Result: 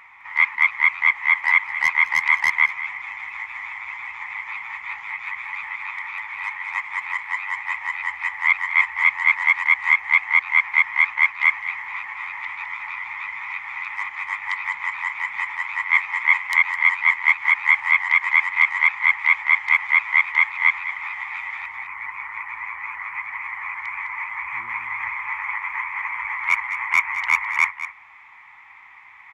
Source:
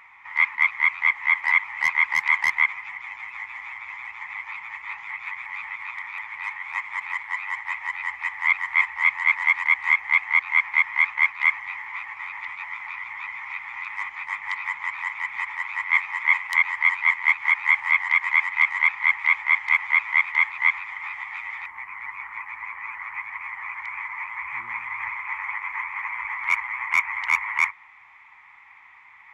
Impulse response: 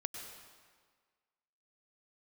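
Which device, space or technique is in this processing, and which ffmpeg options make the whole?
ducked delay: -filter_complex "[0:a]asplit=3[link_01][link_02][link_03];[link_02]adelay=208,volume=-5dB[link_04];[link_03]apad=whole_len=1302771[link_05];[link_04][link_05]sidechaincompress=threshold=-31dB:ratio=4:attack=7.6:release=312[link_06];[link_01][link_06]amix=inputs=2:normalize=0,volume=2.5dB"

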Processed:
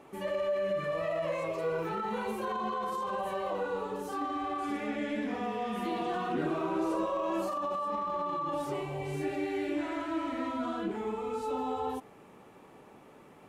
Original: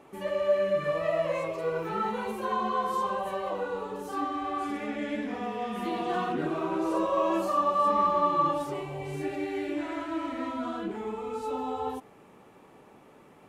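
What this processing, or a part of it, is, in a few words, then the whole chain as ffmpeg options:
de-esser from a sidechain: -filter_complex "[0:a]asplit=2[link_01][link_02];[link_02]highpass=frequency=6700:poles=1,apad=whole_len=594640[link_03];[link_01][link_03]sidechaincompress=threshold=-48dB:ratio=8:attack=4.7:release=24"

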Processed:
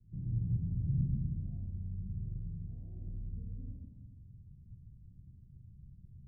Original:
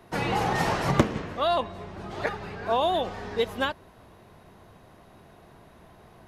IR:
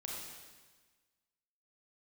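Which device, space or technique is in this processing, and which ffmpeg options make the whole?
club heard from the street: -filter_complex "[0:a]alimiter=limit=-20.5dB:level=0:latency=1:release=20,lowpass=frequency=140:width=0.5412,lowpass=frequency=140:width=1.3066[link_01];[1:a]atrim=start_sample=2205[link_02];[link_01][link_02]afir=irnorm=-1:irlink=0,volume=5.5dB"

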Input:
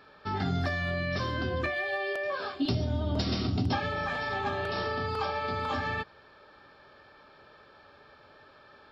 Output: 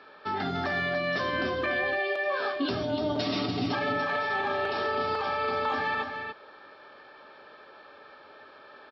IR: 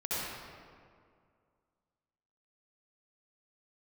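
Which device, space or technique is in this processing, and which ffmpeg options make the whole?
DJ mixer with the lows and highs turned down: -filter_complex "[0:a]asettb=1/sr,asplit=3[link_01][link_02][link_03];[link_01]atrim=end=2.834[link_04];[link_02]atrim=start=2.83:end=4.23,asetpts=PTS-STARTPTS,afade=type=in:duration=0.004:curve=qsin,afade=type=out:start_time=1.396:duration=0.004:curve=qsin,aecho=1:1:6.9:0.87,atrim=end_sample=61740[link_05];[link_03]atrim=start=4.226[link_06];[link_04][link_05]acrossfade=duration=0.004:curve1=hsin:curve2=qsin[link_07];[link_07][link_06]acrossfade=duration=0.004:curve1=qsin:curve2=hsin,acrossover=split=230 5100:gain=0.158 1 0.126[link_08][link_09][link_10];[link_08][link_09][link_10]amix=inputs=3:normalize=0,alimiter=level_in=2dB:limit=-24dB:level=0:latency=1:release=36,volume=-2dB,aecho=1:1:292:0.473,volume=4.5dB"

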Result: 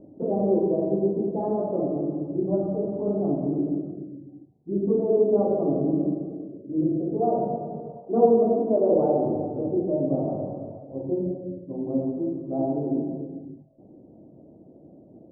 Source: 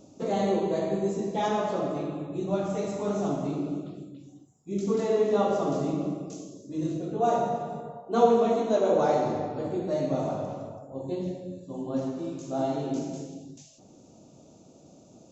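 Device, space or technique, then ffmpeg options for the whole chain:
under water: -af "lowpass=frequency=680:width=0.5412,lowpass=frequency=680:width=1.3066,equalizer=frequency=330:width_type=o:width=0.51:gain=5,volume=2.5dB"

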